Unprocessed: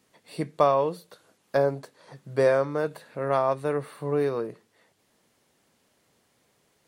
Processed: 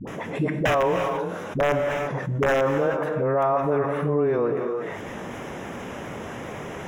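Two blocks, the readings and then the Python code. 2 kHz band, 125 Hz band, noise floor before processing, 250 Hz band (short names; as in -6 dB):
+8.0 dB, +7.0 dB, -69 dBFS, +6.5 dB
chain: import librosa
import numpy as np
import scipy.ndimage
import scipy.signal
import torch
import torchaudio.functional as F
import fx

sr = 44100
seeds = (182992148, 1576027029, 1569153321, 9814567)

y = fx.wow_flutter(x, sr, seeds[0], rate_hz=2.1, depth_cents=62.0)
y = fx.dispersion(y, sr, late='highs', ms=74.0, hz=490.0)
y = (np.mod(10.0 ** (14.0 / 20.0) * y + 1.0, 2.0) - 1.0) / 10.0 ** (14.0 / 20.0)
y = np.convolve(y, np.full(10, 1.0 / 10))[:len(y)]
y = fx.rev_gated(y, sr, seeds[1], gate_ms=370, shape='flat', drr_db=11.0)
y = fx.env_flatten(y, sr, amount_pct=70)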